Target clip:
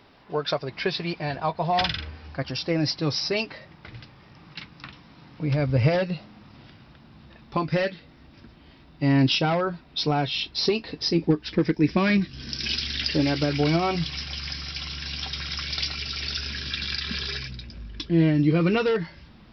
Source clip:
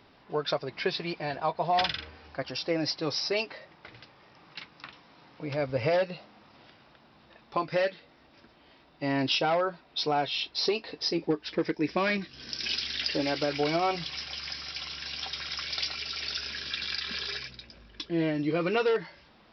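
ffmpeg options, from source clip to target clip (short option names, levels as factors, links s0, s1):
-af "asubboost=boost=4.5:cutoff=240,volume=1.5"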